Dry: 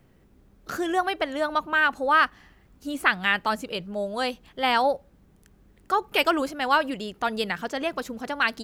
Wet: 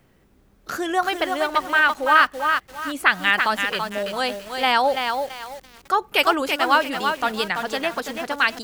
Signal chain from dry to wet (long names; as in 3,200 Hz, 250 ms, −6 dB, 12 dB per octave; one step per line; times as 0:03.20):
low-shelf EQ 460 Hz −6 dB
feedback echo at a low word length 334 ms, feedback 35%, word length 7 bits, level −5 dB
level +4.5 dB